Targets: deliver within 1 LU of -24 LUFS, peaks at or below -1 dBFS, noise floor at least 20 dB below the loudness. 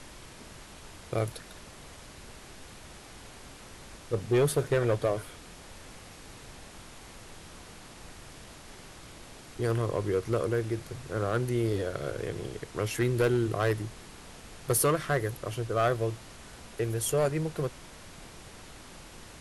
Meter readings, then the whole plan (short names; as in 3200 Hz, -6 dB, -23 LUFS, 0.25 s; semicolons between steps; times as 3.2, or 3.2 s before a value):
clipped 0.4%; flat tops at -19.0 dBFS; noise floor -49 dBFS; noise floor target -50 dBFS; loudness -30.0 LUFS; peak -19.0 dBFS; loudness target -24.0 LUFS
-> clip repair -19 dBFS; noise print and reduce 6 dB; gain +6 dB